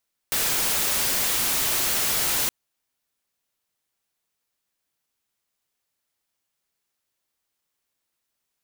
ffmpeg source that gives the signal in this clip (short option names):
-f lavfi -i "anoisesrc=c=white:a=0.116:d=2.17:r=44100:seed=1"